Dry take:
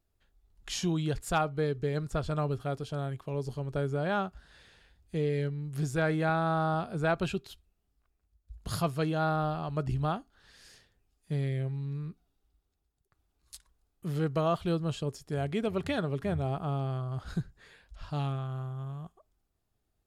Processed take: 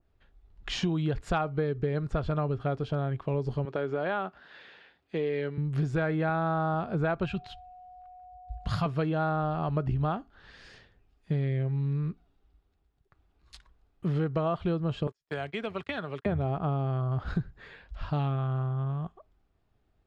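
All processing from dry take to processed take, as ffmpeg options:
ffmpeg -i in.wav -filter_complex "[0:a]asettb=1/sr,asplit=3[link_01][link_02][link_03];[link_01]atrim=end=3.654[link_04];[link_02]atrim=start=3.65:end=5.58,asetpts=PTS-STARTPTS,afade=type=in:duration=0.004:curve=qsin,afade=type=out:start_time=1.926:duration=0.004:curve=qsin,highpass=270,lowpass=3300,aemphasis=mode=production:type=75fm,acompressor=threshold=-34dB:ratio=2:attack=3.2:release=140:knee=1:detection=peak[link_05];[link_03]atrim=start=5.576[link_06];[link_04][link_05]acrossfade=duration=0.004:curve1=hsin:curve2=qsin[link_07];[link_07][link_06]acrossfade=duration=0.004:curve1=qsin:curve2=hsin,asettb=1/sr,asplit=3[link_08][link_09][link_10];[link_08]atrim=end=7.254[link_11];[link_09]atrim=start=7.25:end=8.86,asetpts=PTS-STARTPTS,afade=type=in:duration=0.004:curve=qsin,afade=type=out:start_time=1.606:duration=0.004:curve=qsin,equalizer=frequency=380:width=1.2:gain=-12.5,aeval=exprs='val(0)+0.00178*sin(2*PI*730*n/s)':channel_layout=same[link_12];[link_10]atrim=start=8.856[link_13];[link_11][link_12]acrossfade=duration=0.004:curve1=hsin:curve2=qsin[link_14];[link_14][link_13]acrossfade=duration=0.004:curve1=qsin:curve2=hsin,asettb=1/sr,asplit=3[link_15][link_16][link_17];[link_15]atrim=end=15.074[link_18];[link_16]atrim=start=15.07:end=16.26,asetpts=PTS-STARTPTS,afade=type=in:duration=0.004:curve=qsin,afade=type=out:start_time=1.186:duration=0.004:curve=qsin,agate=range=-39dB:threshold=-37dB:ratio=16:release=100:detection=peak,tiltshelf=frequency=640:gain=-8.5,acrossover=split=240|4900[link_19][link_20][link_21];[link_19]acompressor=threshold=-50dB:ratio=4[link_22];[link_20]acompressor=threshold=-41dB:ratio=4[link_23];[link_21]acompressor=threshold=-57dB:ratio=4[link_24];[link_22][link_23][link_24]amix=inputs=3:normalize=0[link_25];[link_17]atrim=start=16.256[link_26];[link_18][link_25]acrossfade=duration=0.004:curve1=hsin:curve2=qsin[link_27];[link_27][link_26]acrossfade=duration=0.004:curve1=qsin:curve2=hsin,lowpass=3000,acompressor=threshold=-33dB:ratio=6,adynamicequalizer=threshold=0.002:dfrequency=2300:dqfactor=0.7:tfrequency=2300:tqfactor=0.7:attack=5:release=100:ratio=0.375:range=1.5:mode=cutabove:tftype=highshelf,volume=8dB" out.wav

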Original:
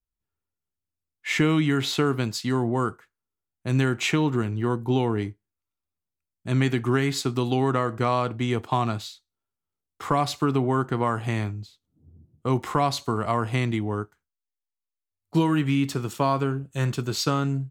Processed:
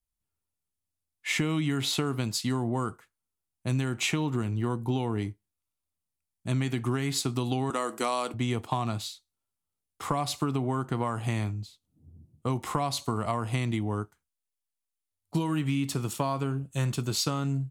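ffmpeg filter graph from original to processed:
ffmpeg -i in.wav -filter_complex "[0:a]asettb=1/sr,asplit=3[link_01][link_02][link_03];[link_01]atrim=end=7.704[link_04];[link_02]atrim=start=7.7:end=8.34,asetpts=PTS-STARTPTS,afade=type=in:duration=0.004:curve=qsin,afade=type=out:start_time=0.636:duration=0.004:curve=qsin,highpass=frequency=250:width=0.5412,highpass=frequency=250:width=1.3066,equalizer=frequency=11000:width_type=o:width=2:gain=13.5[link_05];[link_03]atrim=start=8.336[link_06];[link_04][link_05]acrossfade=duration=0.004:curve1=hsin:curve2=qsin[link_07];[link_07][link_06]acrossfade=duration=0.004:curve1=qsin:curve2=hsin,equalizer=frequency=400:width_type=o:width=0.67:gain=-4,equalizer=frequency=1600:width_type=o:width=0.67:gain=-5,equalizer=frequency=10000:width_type=o:width=0.67:gain=7,acompressor=threshold=-24dB:ratio=6" out.wav

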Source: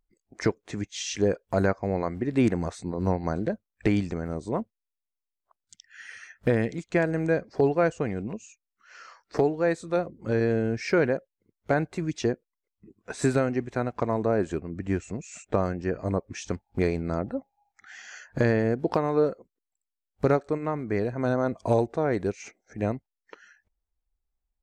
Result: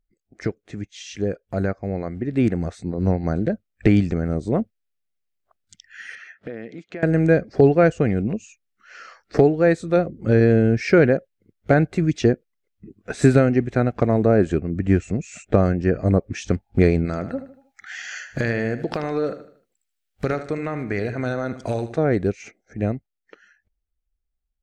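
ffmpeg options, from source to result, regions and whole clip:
ffmpeg -i in.wav -filter_complex "[0:a]asettb=1/sr,asplit=3[link_01][link_02][link_03];[link_01]atrim=end=6.154[link_04];[link_02]atrim=start=6.15:end=7.03,asetpts=PTS-STARTPTS,afade=type=in:duration=0.004:curve=qsin,afade=type=out:start_time=0.876:duration=0.004:curve=qsin,highpass=260,lowpass=4200,acompressor=threshold=-45dB:ratio=2.5:attack=3.2:release=140:knee=1:detection=peak[link_05];[link_03]atrim=start=7.026[link_06];[link_04][link_05]acrossfade=duration=0.004:curve1=hsin:curve2=qsin[link_07];[link_07][link_06]acrossfade=duration=0.004:curve1=qsin:curve2=hsin,asettb=1/sr,asplit=3[link_08][link_09][link_10];[link_08]atrim=end=17.054[link_11];[link_09]atrim=start=17.05:end=21.98,asetpts=PTS-STARTPTS,afade=type=in:duration=0.004:curve=qsin,afade=type=out:start_time=4.926:duration=0.004:curve=qsin,tiltshelf=frequency=880:gain=-6.5,acompressor=threshold=-29dB:ratio=2.5:attack=3.2:release=140:knee=1:detection=peak,aecho=1:1:77|154|231|308:0.251|0.103|0.0422|0.0173,atrim=end_sample=217413[link_12];[link_10]atrim=start=21.976[link_13];[link_11][link_12]acrossfade=duration=0.004:curve1=hsin:curve2=qsin[link_14];[link_14][link_13]acrossfade=duration=0.004:curve1=qsin:curve2=hsin,equalizer=frequency=980:width_type=o:width=0.38:gain=-12,dynaudnorm=framelen=500:gausssize=13:maxgain=11.5dB,bass=frequency=250:gain=4,treble=frequency=4000:gain=-6,volume=-2dB" out.wav

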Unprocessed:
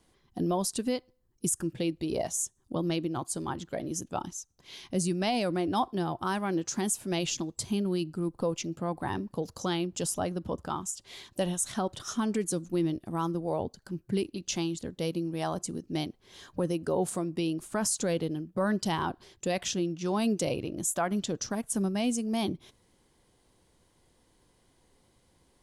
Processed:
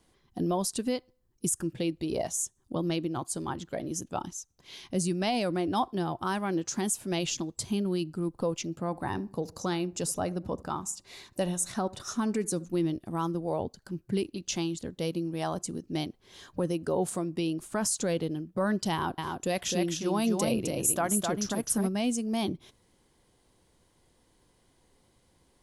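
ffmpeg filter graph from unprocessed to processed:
ffmpeg -i in.wav -filter_complex "[0:a]asettb=1/sr,asplit=3[link_01][link_02][link_03];[link_01]atrim=end=8.804[link_04];[link_02]atrim=start=8.8:end=12.65,asetpts=PTS-STARTPTS,afade=type=in:duration=0.004:curve=qsin,afade=type=out:start_time=3.846:duration=0.004:curve=qsin,bandreject=frequency=3200:width=6.1,asplit=2[link_05][link_06];[link_06]adelay=73,lowpass=frequency=1300:poles=1,volume=-20dB,asplit=2[link_07][link_08];[link_08]adelay=73,lowpass=frequency=1300:poles=1,volume=0.42,asplit=2[link_09][link_10];[link_10]adelay=73,lowpass=frequency=1300:poles=1,volume=0.42[link_11];[link_05][link_07][link_09][link_11]amix=inputs=4:normalize=0,atrim=end_sample=169785[link_12];[link_03]atrim=start=12.646[link_13];[link_04][link_12]acrossfade=duration=0.004:curve1=hsin:curve2=qsin[link_14];[link_14][link_13]acrossfade=duration=0.004:curve1=qsin:curve2=hsin,asettb=1/sr,asplit=3[link_15][link_16][link_17];[link_15]atrim=end=18.924[link_18];[link_16]atrim=start=18.92:end=21.89,asetpts=PTS-STARTPTS,afade=type=in:duration=0.004:curve=qsin,afade=type=out:start_time=2.966:duration=0.004:curve=qsin,equalizer=frequency=11000:width_type=o:width=0.21:gain=12.5,aecho=1:1:259:0.631,atrim=end_sample=130977[link_19];[link_17]atrim=start=21.886[link_20];[link_18][link_19]acrossfade=duration=0.004:curve1=hsin:curve2=qsin[link_21];[link_21][link_20]acrossfade=duration=0.004:curve1=qsin:curve2=hsin" out.wav

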